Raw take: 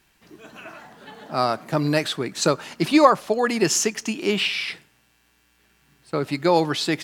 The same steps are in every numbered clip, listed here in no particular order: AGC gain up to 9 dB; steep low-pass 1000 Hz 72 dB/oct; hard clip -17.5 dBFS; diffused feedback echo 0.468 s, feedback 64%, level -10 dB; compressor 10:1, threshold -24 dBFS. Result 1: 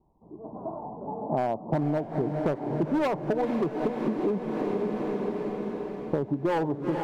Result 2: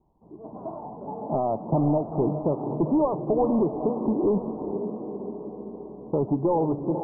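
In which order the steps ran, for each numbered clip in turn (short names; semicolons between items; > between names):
steep low-pass > hard clip > AGC > diffused feedback echo > compressor; compressor > AGC > diffused feedback echo > hard clip > steep low-pass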